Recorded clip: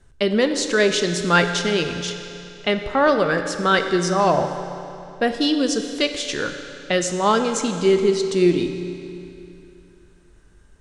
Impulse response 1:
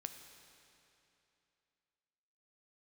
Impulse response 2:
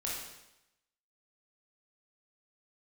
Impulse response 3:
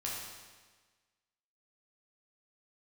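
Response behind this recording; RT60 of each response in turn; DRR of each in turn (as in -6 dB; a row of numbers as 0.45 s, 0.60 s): 1; 2.9 s, 0.90 s, 1.4 s; 6.5 dB, -5.0 dB, -5.0 dB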